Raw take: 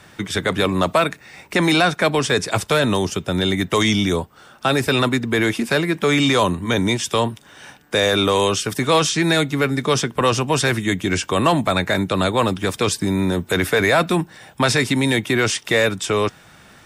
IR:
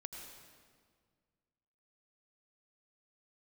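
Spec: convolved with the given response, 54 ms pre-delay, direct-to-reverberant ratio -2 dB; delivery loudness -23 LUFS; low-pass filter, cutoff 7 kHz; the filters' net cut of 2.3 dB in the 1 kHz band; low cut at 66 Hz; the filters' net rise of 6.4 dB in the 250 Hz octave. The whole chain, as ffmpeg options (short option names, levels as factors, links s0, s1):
-filter_complex "[0:a]highpass=66,lowpass=7000,equalizer=f=250:t=o:g=8.5,equalizer=f=1000:t=o:g=-3.5,asplit=2[s0][s1];[1:a]atrim=start_sample=2205,adelay=54[s2];[s1][s2]afir=irnorm=-1:irlink=0,volume=1.78[s3];[s0][s3]amix=inputs=2:normalize=0,volume=0.299"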